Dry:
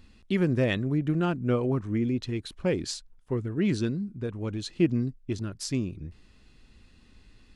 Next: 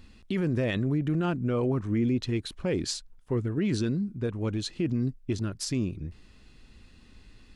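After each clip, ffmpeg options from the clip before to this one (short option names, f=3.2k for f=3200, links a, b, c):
-af "alimiter=limit=-22dB:level=0:latency=1:release=22,volume=2.5dB"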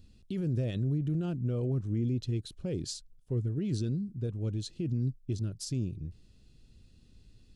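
-af "equalizer=f=125:t=o:w=1:g=6,equalizer=f=250:t=o:w=1:g=-3,equalizer=f=1k:t=o:w=1:g=-12,equalizer=f=2k:t=o:w=1:g=-11,volume=-5dB"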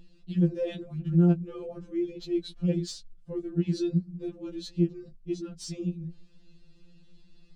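-af "adynamicsmooth=sensitivity=3.5:basefreq=5.4k,afftfilt=real='re*2.83*eq(mod(b,8),0)':imag='im*2.83*eq(mod(b,8),0)':win_size=2048:overlap=0.75,volume=7dB"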